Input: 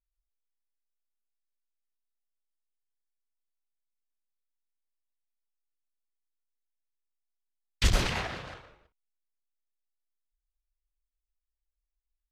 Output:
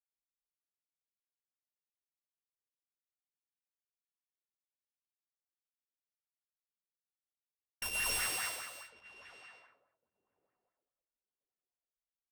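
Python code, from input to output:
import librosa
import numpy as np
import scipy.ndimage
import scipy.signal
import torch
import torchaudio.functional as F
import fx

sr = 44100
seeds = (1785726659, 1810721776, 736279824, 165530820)

p1 = np.r_[np.sort(x[:len(x) // 16 * 16].reshape(-1, 16), axis=1).ravel(), x[len(x) // 16 * 16:]]
p2 = scipy.signal.sosfilt(scipy.signal.butter(2, 43.0, 'highpass', fs=sr, output='sos'), p1)
p3 = librosa.effects.preemphasis(p2, coef=0.97, zi=[0.0])
p4 = np.clip(p3, -10.0 ** (-20.0 / 20.0), 10.0 ** (-20.0 / 20.0))
p5 = fx.high_shelf(p4, sr, hz=4900.0, db=-7.0)
p6 = fx.hum_notches(p5, sr, base_hz=60, count=2)
p7 = p6 + fx.echo_thinned(p6, sr, ms=1103, feedback_pct=18, hz=170.0, wet_db=-17.0, dry=0)
p8 = fx.env_lowpass(p7, sr, base_hz=360.0, full_db=-48.0)
p9 = fx.rev_gated(p8, sr, seeds[0], gate_ms=310, shape='rising', drr_db=-6.5)
y = fx.bell_lfo(p9, sr, hz=4.8, low_hz=360.0, high_hz=1900.0, db=11)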